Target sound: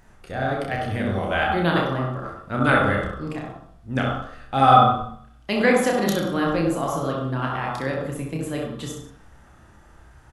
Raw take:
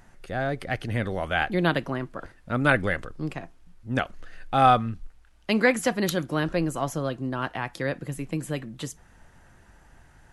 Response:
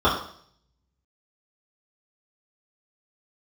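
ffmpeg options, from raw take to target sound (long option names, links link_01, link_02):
-filter_complex "[0:a]aecho=1:1:30|63|99.3|139.2|183.2:0.631|0.398|0.251|0.158|0.1,asplit=2[link_01][link_02];[1:a]atrim=start_sample=2205,adelay=63[link_03];[link_02][link_03]afir=irnorm=-1:irlink=0,volume=-21.5dB[link_04];[link_01][link_04]amix=inputs=2:normalize=0,volume=-1dB"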